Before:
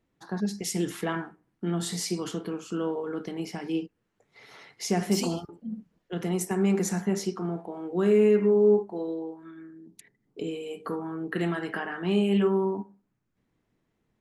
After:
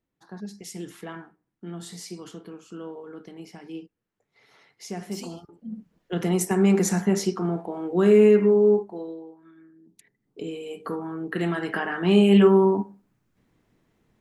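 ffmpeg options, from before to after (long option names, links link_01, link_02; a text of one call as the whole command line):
ffmpeg -i in.wav -af "volume=20dB,afade=type=in:start_time=5.42:duration=0.71:silence=0.223872,afade=type=out:start_time=8.26:duration=0.99:silence=0.251189,afade=type=in:start_time=9.76:duration=1.06:silence=0.375837,afade=type=in:start_time=11.39:duration=0.99:silence=0.473151" out.wav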